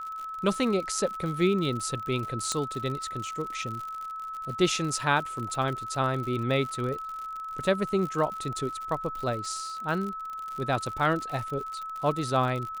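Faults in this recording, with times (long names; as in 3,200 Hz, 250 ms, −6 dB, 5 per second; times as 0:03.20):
surface crackle 73 per second −34 dBFS
whistle 1,300 Hz −34 dBFS
0:02.52: click −15 dBFS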